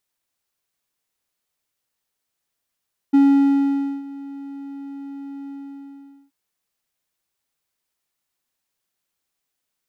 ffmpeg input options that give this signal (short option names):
-f lavfi -i "aevalsrc='0.422*(1-4*abs(mod(278*t+0.25,1)-0.5))':d=3.178:s=44100,afade=t=in:d=0.015,afade=t=out:st=0.015:d=0.88:silence=0.0841,afade=t=out:st=2.36:d=0.818"